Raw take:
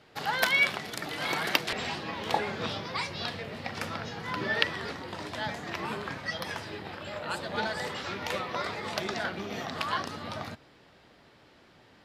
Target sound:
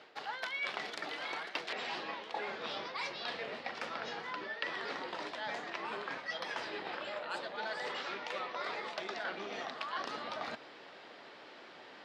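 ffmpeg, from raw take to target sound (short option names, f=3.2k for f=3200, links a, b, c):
-af "areverse,acompressor=threshold=-42dB:ratio=16,areverse,highpass=380,lowpass=4.9k,volume=7dB"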